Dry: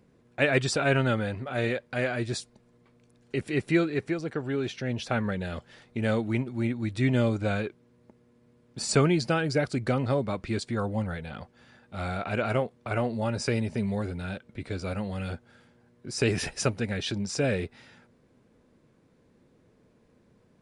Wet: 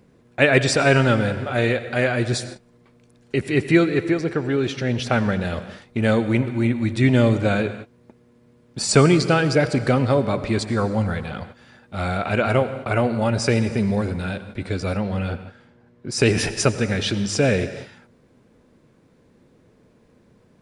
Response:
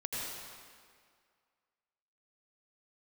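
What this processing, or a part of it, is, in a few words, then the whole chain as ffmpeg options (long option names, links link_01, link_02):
keyed gated reverb: -filter_complex "[0:a]asplit=3[link_01][link_02][link_03];[1:a]atrim=start_sample=2205[link_04];[link_02][link_04]afir=irnorm=-1:irlink=0[link_05];[link_03]apad=whole_len=909042[link_06];[link_05][link_06]sidechaingate=range=-33dB:threshold=-50dB:ratio=16:detection=peak,volume=-13dB[link_07];[link_01][link_07]amix=inputs=2:normalize=0,asettb=1/sr,asplit=3[link_08][link_09][link_10];[link_08]atrim=end=14.974[link_11];[link_09]atrim=start=14.97:end=16.12,asetpts=PTS-STARTPTS,afade=type=in:duration=0.004:curve=qsin,afade=type=out:start_time=1.146:duration=0.004:curve=qsin,aemphasis=mode=reproduction:type=50fm[link_12];[link_10]atrim=start=16.116[link_13];[link_11][link_12]acrossfade=duration=0.004:curve1=hsin:curve2=qsin[link_14];[link_14][link_13]acrossfade=duration=0.004:curve1=qsin:curve2=hsin,volume=6.5dB"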